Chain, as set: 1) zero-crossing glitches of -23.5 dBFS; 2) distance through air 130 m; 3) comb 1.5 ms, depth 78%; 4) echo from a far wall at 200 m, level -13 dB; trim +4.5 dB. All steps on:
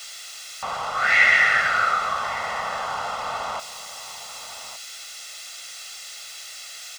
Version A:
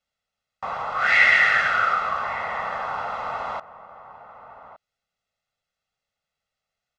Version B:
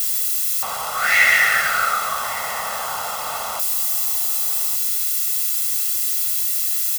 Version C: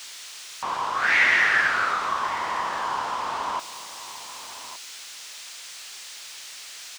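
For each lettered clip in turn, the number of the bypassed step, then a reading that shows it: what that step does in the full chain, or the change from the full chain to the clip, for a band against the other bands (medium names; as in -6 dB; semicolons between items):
1, 4 kHz band -4.0 dB; 2, 8 kHz band +12.5 dB; 3, 250 Hz band +5.5 dB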